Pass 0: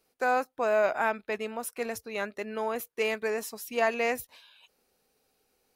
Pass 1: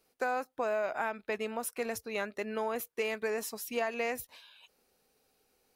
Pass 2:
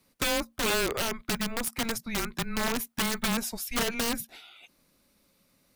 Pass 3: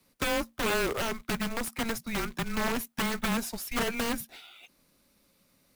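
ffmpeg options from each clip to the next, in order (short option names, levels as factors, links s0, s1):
-af "acompressor=threshold=0.0355:ratio=6"
-af "aeval=exprs='(mod(22.4*val(0)+1,2)-1)/22.4':c=same,afreqshift=-230,volume=1.88"
-filter_complex "[0:a]acrossover=split=180|1600|2200[s0][s1][s2][s3];[s3]asoftclip=type=tanh:threshold=0.0237[s4];[s0][s1][s2][s4]amix=inputs=4:normalize=0,acrusher=bits=3:mode=log:mix=0:aa=0.000001"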